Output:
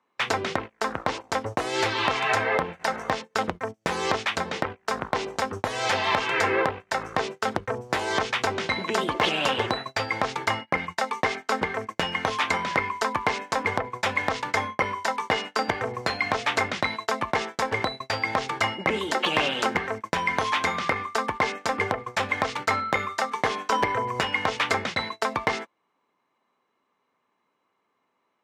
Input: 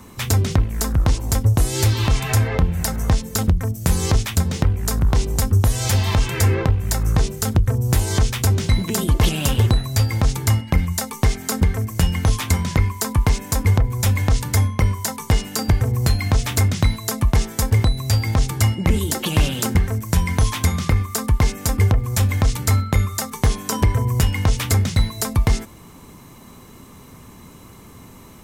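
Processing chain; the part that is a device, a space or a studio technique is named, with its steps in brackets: walkie-talkie (band-pass 560–2600 Hz; hard clipper -17 dBFS, distortion -17 dB; gate -38 dBFS, range -29 dB); trim +6 dB

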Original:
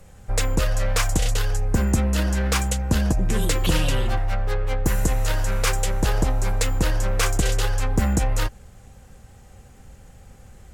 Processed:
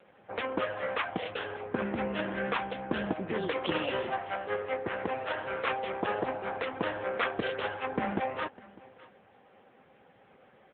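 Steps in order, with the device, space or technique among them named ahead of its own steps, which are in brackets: satellite phone (band-pass 320–3200 Hz; delay 603 ms -21 dB; AMR-NB 6.7 kbps 8 kHz)

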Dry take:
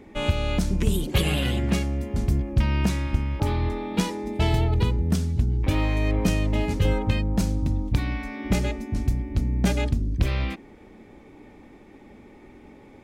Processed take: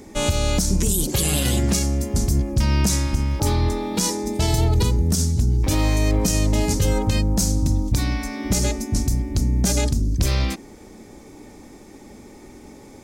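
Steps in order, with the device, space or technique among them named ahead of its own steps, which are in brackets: over-bright horn tweeter (resonant high shelf 4.1 kHz +13 dB, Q 1.5; peak limiter -15 dBFS, peak gain reduction 10.5 dB); trim +5 dB

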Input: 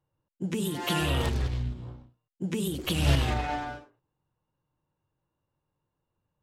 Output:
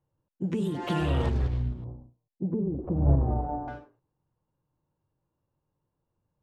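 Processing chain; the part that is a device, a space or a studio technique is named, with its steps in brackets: through cloth (low-pass 8.7 kHz 12 dB/octave; treble shelf 1.9 kHz -14.5 dB); 1.84–3.68 s: inverse Chebyshev low-pass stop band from 5.1 kHz, stop band 80 dB; trim +2 dB

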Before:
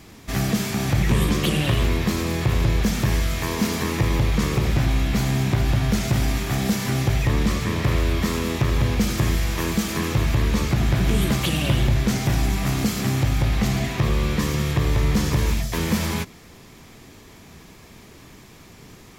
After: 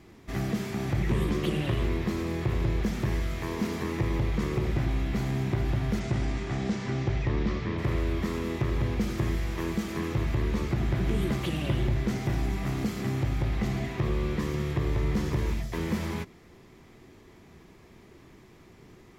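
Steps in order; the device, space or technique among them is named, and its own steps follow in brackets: 5.99–7.77 s: low-pass 9.2 kHz -> 5.3 kHz 24 dB/octave; inside a helmet (treble shelf 3.4 kHz -10 dB; small resonant body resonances 360/2000 Hz, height 7 dB); trim -7.5 dB

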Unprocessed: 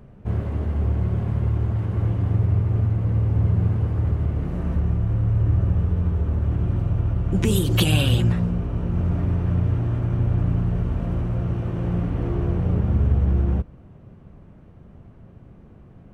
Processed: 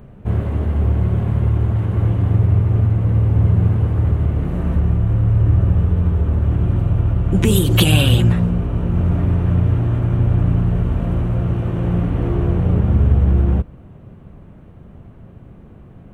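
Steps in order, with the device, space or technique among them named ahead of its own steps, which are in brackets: exciter from parts (in parallel at -6 dB: high-pass 4 kHz 24 dB/octave + saturation -26.5 dBFS, distortion -13 dB + high-pass 2.8 kHz 12 dB/octave); on the sum: trim +5.5 dB

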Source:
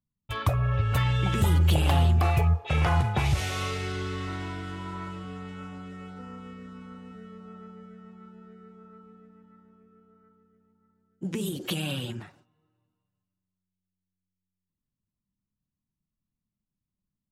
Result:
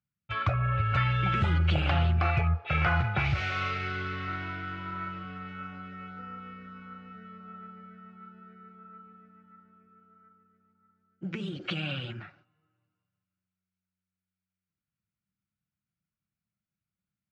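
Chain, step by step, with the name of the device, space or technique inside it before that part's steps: guitar cabinet (cabinet simulation 80–4300 Hz, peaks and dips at 250 Hz -8 dB, 430 Hz -7 dB, 950 Hz -7 dB, 1.4 kHz +10 dB, 2.3 kHz +6 dB, 3.6 kHz -4 dB); trim -1.5 dB

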